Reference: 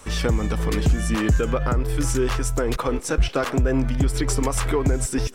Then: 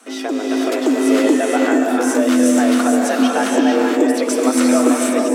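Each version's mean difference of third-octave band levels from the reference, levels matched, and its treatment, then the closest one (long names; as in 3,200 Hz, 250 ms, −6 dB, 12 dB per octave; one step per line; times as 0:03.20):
11.5 dB: automatic gain control gain up to 5 dB
frequency shifter +210 Hz
reverb whose tail is shaped and stops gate 500 ms rising, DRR −1.5 dB
level −2.5 dB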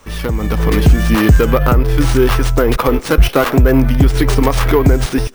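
3.5 dB: stylus tracing distortion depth 0.28 ms
automatic gain control gain up to 11.5 dB
bad sample-rate conversion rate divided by 3×, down filtered, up hold
level +1 dB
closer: second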